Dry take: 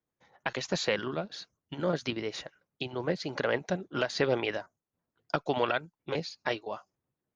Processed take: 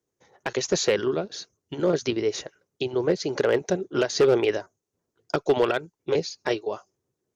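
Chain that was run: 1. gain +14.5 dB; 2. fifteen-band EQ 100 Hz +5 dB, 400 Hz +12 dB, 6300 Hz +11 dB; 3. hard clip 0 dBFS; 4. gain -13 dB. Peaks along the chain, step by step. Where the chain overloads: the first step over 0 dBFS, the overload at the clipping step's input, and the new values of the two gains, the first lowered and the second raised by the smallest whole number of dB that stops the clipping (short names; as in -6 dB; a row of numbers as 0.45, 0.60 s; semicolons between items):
+1.0, +6.0, 0.0, -13.0 dBFS; step 1, 6.0 dB; step 1 +8.5 dB, step 4 -7 dB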